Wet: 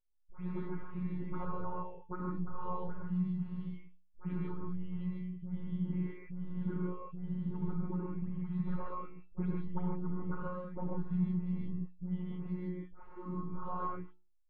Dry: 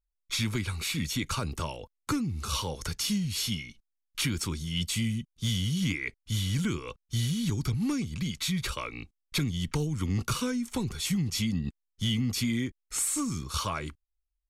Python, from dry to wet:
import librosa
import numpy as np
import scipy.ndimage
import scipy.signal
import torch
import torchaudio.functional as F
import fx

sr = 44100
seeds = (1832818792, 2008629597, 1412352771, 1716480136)

y = fx.spec_delay(x, sr, highs='late', ms=244)
y = scipy.signal.sosfilt(scipy.signal.butter(4, 1200.0, 'lowpass', fs=sr, output='sos'), y)
y = fx.hum_notches(y, sr, base_hz=60, count=5)
y = fx.robotise(y, sr, hz=181.0)
y = fx.comb_fb(y, sr, f0_hz=440.0, decay_s=0.34, harmonics='all', damping=0.0, mix_pct=80)
y = fx.rev_gated(y, sr, seeds[0], gate_ms=170, shape='rising', drr_db=-2.0)
y = y * librosa.db_to_amplitude(8.5)